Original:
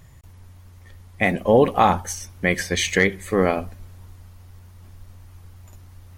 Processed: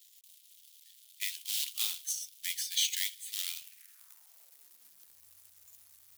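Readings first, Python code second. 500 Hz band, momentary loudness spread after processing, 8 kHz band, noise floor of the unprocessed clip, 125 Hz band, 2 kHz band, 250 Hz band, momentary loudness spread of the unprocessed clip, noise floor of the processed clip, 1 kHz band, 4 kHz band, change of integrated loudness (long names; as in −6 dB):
below −40 dB, 8 LU, −2.5 dB, −47 dBFS, below −40 dB, −20.0 dB, below −40 dB, 10 LU, −62 dBFS, below −40 dB, −2.5 dB, −12.5 dB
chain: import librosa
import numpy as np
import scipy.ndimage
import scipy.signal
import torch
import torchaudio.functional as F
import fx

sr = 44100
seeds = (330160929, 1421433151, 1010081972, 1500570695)

y = fx.quant_companded(x, sr, bits=4)
y = fx.filter_sweep_highpass(y, sr, from_hz=3300.0, to_hz=65.0, start_s=3.58, end_s=5.41, q=2.9)
y = np.diff(y, prepend=0.0)
y = F.gain(torch.from_numpy(y), -6.0).numpy()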